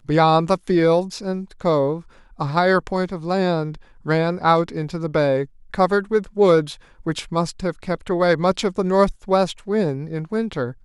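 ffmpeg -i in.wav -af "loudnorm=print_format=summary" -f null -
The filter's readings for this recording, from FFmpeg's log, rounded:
Input Integrated:    -20.7 LUFS
Input True Peak:      -3.4 dBTP
Input LRA:             1.7 LU
Input Threshold:     -30.8 LUFS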